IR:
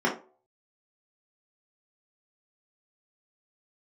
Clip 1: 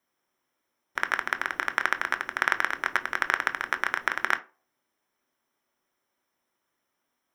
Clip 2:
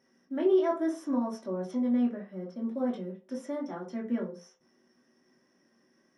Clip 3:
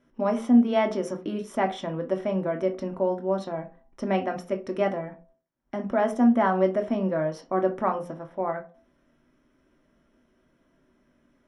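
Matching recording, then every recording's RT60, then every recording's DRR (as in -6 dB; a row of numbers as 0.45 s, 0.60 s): 2; 0.40 s, 0.40 s, 0.40 s; 8.5 dB, -4.5 dB, 3.5 dB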